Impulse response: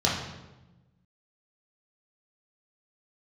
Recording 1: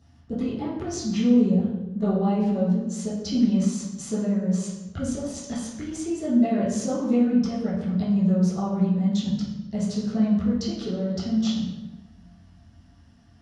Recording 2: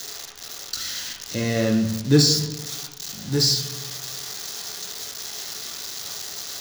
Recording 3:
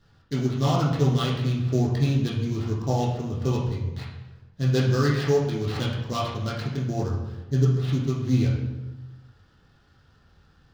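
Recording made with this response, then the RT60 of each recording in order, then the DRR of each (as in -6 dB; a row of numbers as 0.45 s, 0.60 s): 3; 1.1 s, 1.1 s, 1.1 s; -13.5 dB, -0.5 dB, -6.5 dB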